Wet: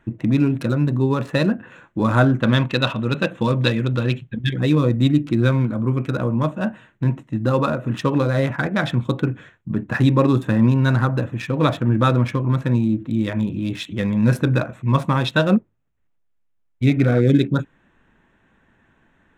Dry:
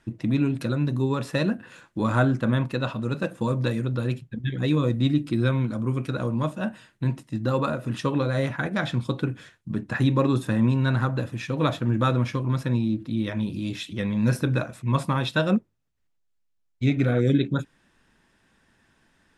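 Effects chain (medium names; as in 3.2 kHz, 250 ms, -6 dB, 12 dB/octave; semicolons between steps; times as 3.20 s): local Wiener filter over 9 samples; 2.43–4.54 s: peaking EQ 3.4 kHz +10.5 dB 1.6 oct; trim +5.5 dB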